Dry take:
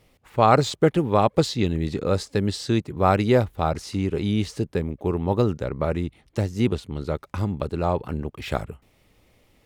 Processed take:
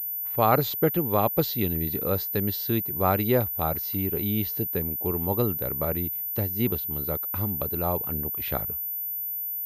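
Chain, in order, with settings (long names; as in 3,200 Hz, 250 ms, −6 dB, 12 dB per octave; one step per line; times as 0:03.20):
switching amplifier with a slow clock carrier 14,000 Hz
level −4.5 dB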